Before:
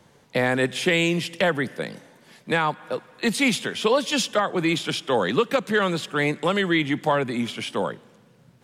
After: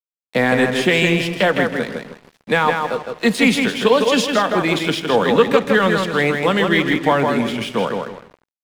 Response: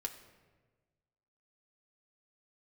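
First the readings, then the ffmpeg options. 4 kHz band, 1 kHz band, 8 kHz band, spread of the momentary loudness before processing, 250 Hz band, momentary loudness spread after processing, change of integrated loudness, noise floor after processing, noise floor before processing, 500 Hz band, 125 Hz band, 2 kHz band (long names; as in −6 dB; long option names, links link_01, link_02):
+4.5 dB, +6.5 dB, +2.0 dB, 8 LU, +6.5 dB, 7 LU, +6.0 dB, below −85 dBFS, −56 dBFS, +7.0 dB, +5.5 dB, +6.5 dB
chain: -filter_complex "[0:a]lowshelf=frequency=370:gain=-5.5,asplit=2[link_01][link_02];[link_02]adelay=160,lowpass=frequency=4100:poles=1,volume=-4dB,asplit=2[link_03][link_04];[link_04]adelay=160,lowpass=frequency=4100:poles=1,volume=0.35,asplit=2[link_05][link_06];[link_06]adelay=160,lowpass=frequency=4100:poles=1,volume=0.35,asplit=2[link_07][link_08];[link_08]adelay=160,lowpass=frequency=4100:poles=1,volume=0.35[link_09];[link_01][link_03][link_05][link_07][link_09]amix=inputs=5:normalize=0,asplit=2[link_10][link_11];[1:a]atrim=start_sample=2205,lowpass=4900,lowshelf=frequency=490:gain=10[link_12];[link_11][link_12]afir=irnorm=-1:irlink=0,volume=-3.5dB[link_13];[link_10][link_13]amix=inputs=2:normalize=0,aeval=exprs='sgn(val(0))*max(abs(val(0))-0.0119,0)':channel_layout=same,volume=2.5dB"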